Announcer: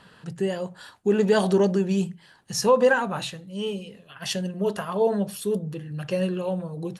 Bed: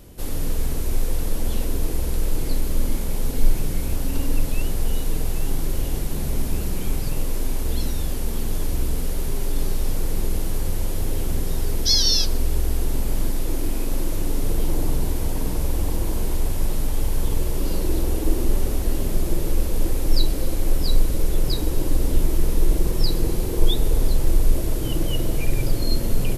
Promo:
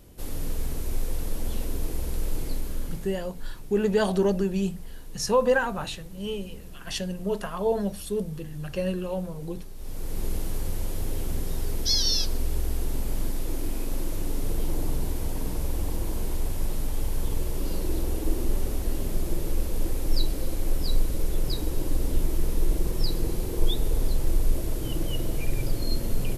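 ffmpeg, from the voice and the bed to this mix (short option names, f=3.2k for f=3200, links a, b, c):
-filter_complex "[0:a]adelay=2650,volume=-3dB[a];[1:a]volume=7.5dB,afade=t=out:st=2.39:d=0.89:silence=0.223872,afade=t=in:st=9.75:d=0.53:silence=0.211349[b];[a][b]amix=inputs=2:normalize=0"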